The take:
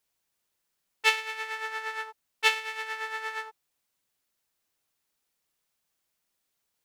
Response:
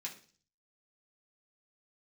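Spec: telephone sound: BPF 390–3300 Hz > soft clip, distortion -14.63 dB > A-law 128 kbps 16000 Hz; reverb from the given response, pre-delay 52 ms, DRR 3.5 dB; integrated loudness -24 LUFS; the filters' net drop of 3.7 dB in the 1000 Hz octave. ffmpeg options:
-filter_complex "[0:a]equalizer=f=1k:t=o:g=-4.5,asplit=2[a][b];[1:a]atrim=start_sample=2205,adelay=52[c];[b][c]afir=irnorm=-1:irlink=0,volume=-2dB[d];[a][d]amix=inputs=2:normalize=0,highpass=390,lowpass=3.3k,asoftclip=threshold=-16dB,volume=8dB" -ar 16000 -c:a pcm_alaw

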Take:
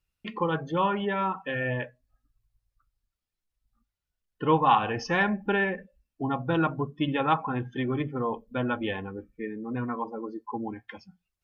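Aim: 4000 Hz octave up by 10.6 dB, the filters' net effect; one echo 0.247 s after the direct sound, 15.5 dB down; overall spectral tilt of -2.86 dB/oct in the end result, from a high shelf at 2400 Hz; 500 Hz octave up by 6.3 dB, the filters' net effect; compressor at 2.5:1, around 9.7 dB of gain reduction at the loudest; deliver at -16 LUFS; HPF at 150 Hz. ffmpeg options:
-af "highpass=150,equalizer=f=500:t=o:g=7,highshelf=f=2.4k:g=8,equalizer=f=4k:t=o:g=7.5,acompressor=threshold=-27dB:ratio=2.5,aecho=1:1:247:0.168,volume=14dB"

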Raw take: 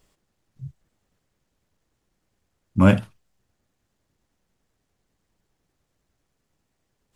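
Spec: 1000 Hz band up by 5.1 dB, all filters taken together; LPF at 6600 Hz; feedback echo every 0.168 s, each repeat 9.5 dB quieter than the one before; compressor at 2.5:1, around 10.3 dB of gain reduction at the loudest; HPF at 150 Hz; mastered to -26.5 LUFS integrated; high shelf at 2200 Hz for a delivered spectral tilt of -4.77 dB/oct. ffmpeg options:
-af "highpass=150,lowpass=6.6k,equalizer=f=1k:t=o:g=5,highshelf=f=2.2k:g=5,acompressor=threshold=-26dB:ratio=2.5,aecho=1:1:168|336|504|672:0.335|0.111|0.0365|0.012,volume=6dB"

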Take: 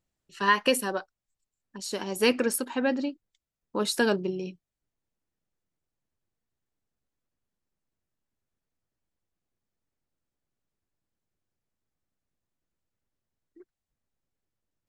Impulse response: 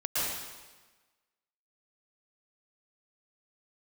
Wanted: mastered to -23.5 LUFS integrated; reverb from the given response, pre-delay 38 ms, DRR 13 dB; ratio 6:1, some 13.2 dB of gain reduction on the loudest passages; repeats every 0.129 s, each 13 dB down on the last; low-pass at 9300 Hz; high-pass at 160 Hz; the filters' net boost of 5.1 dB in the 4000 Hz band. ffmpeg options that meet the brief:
-filter_complex "[0:a]highpass=160,lowpass=9.3k,equalizer=f=4k:t=o:g=7,acompressor=threshold=-30dB:ratio=6,aecho=1:1:129|258|387:0.224|0.0493|0.0108,asplit=2[a][b];[1:a]atrim=start_sample=2205,adelay=38[c];[b][c]afir=irnorm=-1:irlink=0,volume=-22dB[d];[a][d]amix=inputs=2:normalize=0,volume=11dB"

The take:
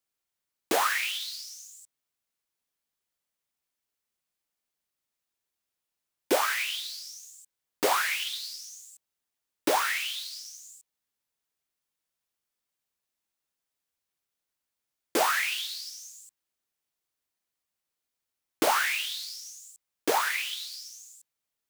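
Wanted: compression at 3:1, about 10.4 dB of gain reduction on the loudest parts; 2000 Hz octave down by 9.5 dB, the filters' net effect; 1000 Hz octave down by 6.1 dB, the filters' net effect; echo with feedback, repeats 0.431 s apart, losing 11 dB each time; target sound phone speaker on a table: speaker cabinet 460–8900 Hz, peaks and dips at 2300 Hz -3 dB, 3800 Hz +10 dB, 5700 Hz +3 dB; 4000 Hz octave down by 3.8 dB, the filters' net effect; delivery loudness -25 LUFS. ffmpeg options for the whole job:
-af "equalizer=f=1k:t=o:g=-5.5,equalizer=f=2k:t=o:g=-7.5,equalizer=f=4k:t=o:g=-8.5,acompressor=threshold=-37dB:ratio=3,highpass=f=460:w=0.5412,highpass=f=460:w=1.3066,equalizer=f=2.3k:t=q:w=4:g=-3,equalizer=f=3.8k:t=q:w=4:g=10,equalizer=f=5.7k:t=q:w=4:g=3,lowpass=f=8.9k:w=0.5412,lowpass=f=8.9k:w=1.3066,aecho=1:1:431|862|1293:0.282|0.0789|0.0221,volume=15.5dB"

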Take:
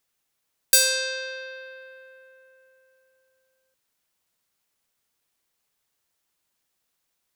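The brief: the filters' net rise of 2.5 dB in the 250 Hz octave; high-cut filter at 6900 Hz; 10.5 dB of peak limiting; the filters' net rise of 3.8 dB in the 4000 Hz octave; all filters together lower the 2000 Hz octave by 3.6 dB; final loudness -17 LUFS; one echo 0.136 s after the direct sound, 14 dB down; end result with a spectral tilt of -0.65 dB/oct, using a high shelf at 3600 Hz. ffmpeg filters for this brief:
-af "lowpass=6.9k,equalizer=f=250:t=o:g=3.5,equalizer=f=2k:t=o:g=-7,highshelf=f=3.6k:g=-3,equalizer=f=4k:t=o:g=8.5,alimiter=limit=-17dB:level=0:latency=1,aecho=1:1:136:0.2,volume=10.5dB"

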